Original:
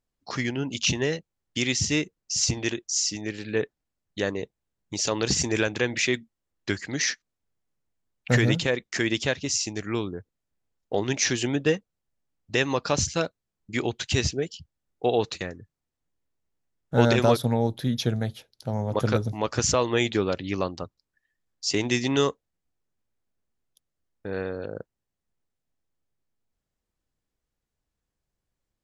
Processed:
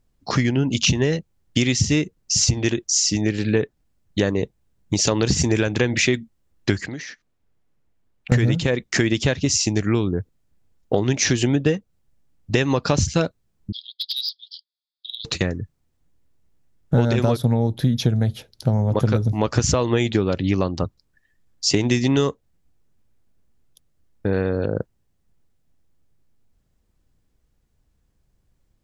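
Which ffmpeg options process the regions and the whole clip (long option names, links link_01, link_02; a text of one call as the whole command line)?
ffmpeg -i in.wav -filter_complex "[0:a]asettb=1/sr,asplit=3[link_01][link_02][link_03];[link_01]atrim=end=6.864[link_04];[link_02]atrim=start=6.86:end=8.32,asetpts=PTS-STARTPTS,afade=type=in:duration=0.004:curve=qsin,afade=type=out:start_time=1.456:duration=0.004:curve=qsin,bass=frequency=250:gain=-5,treble=frequency=4000:gain=-7,acompressor=threshold=-42dB:ratio=6:attack=3.2:release=140:knee=1:detection=peak[link_05];[link_03]atrim=start=8.316[link_06];[link_04][link_05]acrossfade=duration=0.004:curve1=hsin:curve2=qsin[link_07];[link_07][link_06]acrossfade=duration=0.004:curve1=qsin:curve2=hsin,asettb=1/sr,asplit=3[link_08][link_09][link_10];[link_08]atrim=end=13.724[link_11];[link_09]atrim=start=13.72:end=15.25,asetpts=PTS-STARTPTS,afade=type=in:duration=0.004:curve=qsin,afade=type=out:start_time=1.526:duration=0.004:curve=qsin,asuperpass=centerf=4100:order=12:qfactor=2.3,volume=27.5dB,asoftclip=hard,volume=-27.5dB[link_12];[link_10]atrim=start=15.246[link_13];[link_11][link_12]acrossfade=duration=0.004:curve1=hsin:curve2=qsin[link_14];[link_14][link_13]acrossfade=duration=0.004:curve1=qsin:curve2=hsin,lowshelf=frequency=290:gain=10.5,acompressor=threshold=-24dB:ratio=6,volume=8.5dB" out.wav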